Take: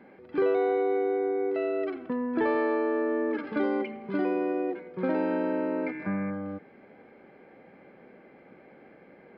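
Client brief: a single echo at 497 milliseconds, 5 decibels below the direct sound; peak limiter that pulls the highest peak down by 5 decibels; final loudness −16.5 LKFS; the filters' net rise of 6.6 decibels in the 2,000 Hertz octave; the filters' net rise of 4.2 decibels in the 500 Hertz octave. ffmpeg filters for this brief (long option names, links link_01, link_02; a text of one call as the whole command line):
ffmpeg -i in.wav -af "equalizer=frequency=500:width_type=o:gain=5,equalizer=frequency=2000:width_type=o:gain=8,alimiter=limit=-17dB:level=0:latency=1,aecho=1:1:497:0.562,volume=9.5dB" out.wav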